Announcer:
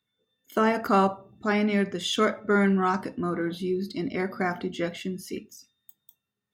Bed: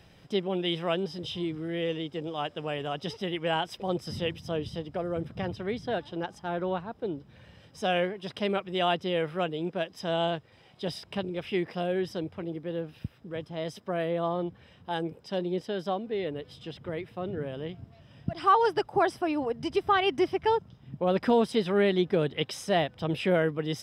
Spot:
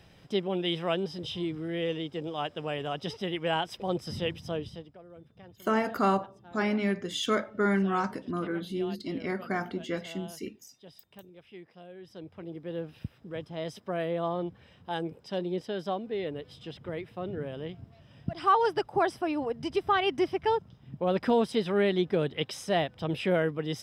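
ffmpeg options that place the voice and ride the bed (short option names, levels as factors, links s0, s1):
-filter_complex "[0:a]adelay=5100,volume=0.631[s0];[1:a]volume=6.68,afade=t=out:st=4.46:d=0.51:silence=0.125893,afade=t=in:st=12:d=0.84:silence=0.141254[s1];[s0][s1]amix=inputs=2:normalize=0"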